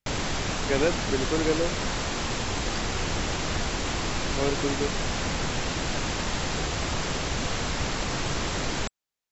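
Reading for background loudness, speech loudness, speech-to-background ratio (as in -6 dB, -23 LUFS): -29.0 LUFS, -29.0 LUFS, 0.0 dB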